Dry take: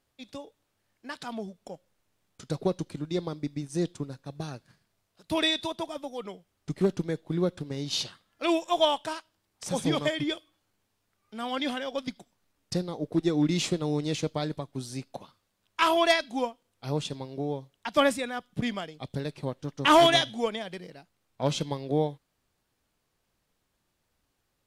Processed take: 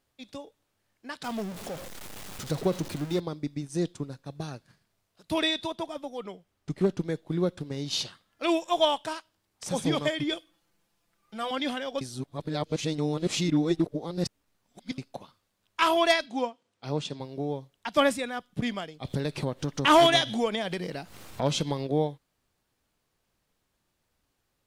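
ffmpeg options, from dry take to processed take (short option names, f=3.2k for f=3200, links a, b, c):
-filter_complex "[0:a]asettb=1/sr,asplit=3[a][b][c];[a]atrim=end=1.244[d];[b]atrim=start=1.24:end=3.2,asetpts=PTS-STARTPTS,afade=t=in:d=0.004:c=qsin,afade=t=out:st=1.956:d=0.004:c=qsin,aeval=exprs='val(0)+0.5*0.0178*sgn(val(0))':c=same[e];[c]atrim=start=3.196[f];[d][e]acrossfade=d=0.004:c1=hsin:c2=qsin[g];[g][f]acrossfade=d=0.004:c1=qsin:c2=hsin,asettb=1/sr,asplit=3[h][i][j];[h]atrim=end=5.424[k];[i]atrim=start=5.42:end=7.05,asetpts=PTS-STARTPTS,afade=t=in:d=0.004:c=qsin,afade=t=out:st=1.626:d=0.004:c=qsin,highshelf=f=4.7k:g=-4.5[l];[j]atrim=start=7.046[m];[k][l]acrossfade=d=0.004:c1=hsin:c2=qsin[n];[n][m]acrossfade=d=0.004:c1=qsin:c2=hsin,asettb=1/sr,asplit=3[o][p][q];[o]atrim=end=10.324[r];[p]atrim=start=10.32:end=11.51,asetpts=PTS-STARTPTS,afade=t=in:d=0.004:c=qsin,afade=t=out:st=1.186:d=0.004:c=qsin,aecho=1:1:5.9:0.88,atrim=end_sample=52479[s];[q]atrim=start=11.506[t];[r][s]acrossfade=d=0.004:c1=hsin:c2=qsin[u];[u][t]acrossfade=d=0.004:c1=qsin:c2=hsin,asettb=1/sr,asplit=3[v][w][x];[v]atrim=end=16.264[y];[w]atrim=start=16.26:end=17.2,asetpts=PTS-STARTPTS,afade=t=in:d=0.004:c=qsin,afade=t=out:st=0.936:d=0.004:c=qsin,highpass=120,lowpass=7.1k[z];[x]atrim=start=17.196[aa];[y][z]acrossfade=d=0.004:c1=hsin:c2=qsin[ab];[ab][aa]acrossfade=d=0.004:c1=qsin:c2=hsin,asettb=1/sr,asplit=3[ac][ad][ae];[ac]atrim=end=19.054[af];[ad]atrim=start=19.05:end=21.87,asetpts=PTS-STARTPTS,afade=t=in:d=0.004:c=qsin,afade=t=out:st=2.816:d=0.004:c=qsin,acompressor=mode=upward:threshold=-21dB:ratio=2.5:attack=3.2:release=140:knee=2.83:detection=peak[ag];[ae]atrim=start=21.866[ah];[af][ag]acrossfade=d=0.004:c1=hsin:c2=qsin[ai];[ai][ah]acrossfade=d=0.004:c1=qsin:c2=hsin,asplit=3[aj][ak][al];[aj]atrim=end=12.012[am];[ak]atrim=start=12.008:end=14.982,asetpts=PTS-STARTPTS,areverse[an];[al]atrim=start=14.978[ao];[am][an]acrossfade=d=0.004:c1=hsin:c2=hsin[ap];[ap][ao]acrossfade=d=0.004:c1=hsin:c2=hsin"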